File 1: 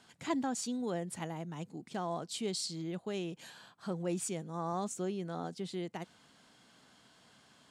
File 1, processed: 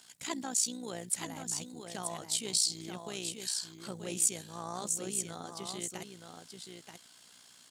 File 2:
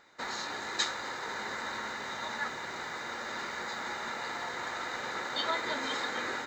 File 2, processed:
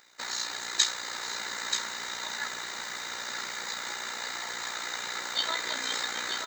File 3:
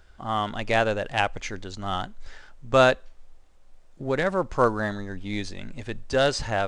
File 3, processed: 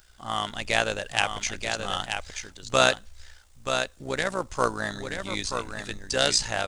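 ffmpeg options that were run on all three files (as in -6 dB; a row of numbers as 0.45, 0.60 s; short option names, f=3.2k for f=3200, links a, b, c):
-af "tremolo=f=60:d=0.667,aecho=1:1:931:0.473,crystalizer=i=7:c=0,volume=-3.5dB"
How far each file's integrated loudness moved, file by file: +4.0, +3.5, -1.5 LU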